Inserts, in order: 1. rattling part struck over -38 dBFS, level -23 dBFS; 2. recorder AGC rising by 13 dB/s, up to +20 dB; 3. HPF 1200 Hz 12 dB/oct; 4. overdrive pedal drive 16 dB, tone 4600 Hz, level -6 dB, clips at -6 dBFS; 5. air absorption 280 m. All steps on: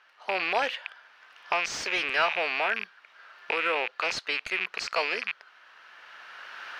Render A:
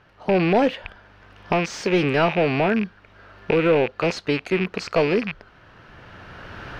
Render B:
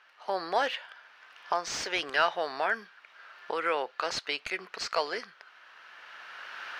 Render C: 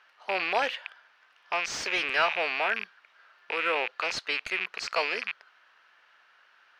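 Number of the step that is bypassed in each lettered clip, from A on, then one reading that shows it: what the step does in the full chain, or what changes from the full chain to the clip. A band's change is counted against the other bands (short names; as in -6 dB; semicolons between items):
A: 3, 250 Hz band +23.5 dB; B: 1, 2 kHz band -5.5 dB; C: 2, momentary loudness spread change -8 LU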